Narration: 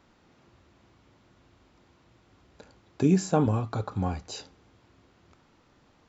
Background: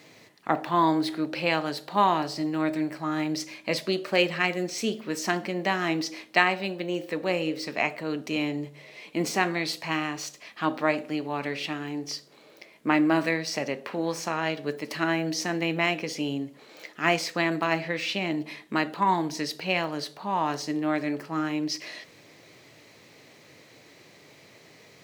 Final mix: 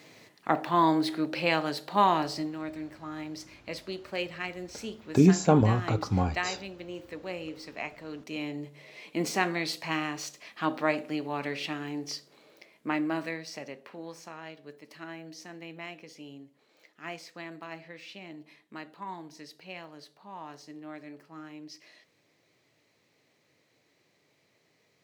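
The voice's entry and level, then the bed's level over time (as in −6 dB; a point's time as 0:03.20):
2.15 s, +2.5 dB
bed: 0:02.36 −1 dB
0:02.58 −10.5 dB
0:08.08 −10.5 dB
0:08.92 −2.5 dB
0:12.09 −2.5 dB
0:14.58 −16.5 dB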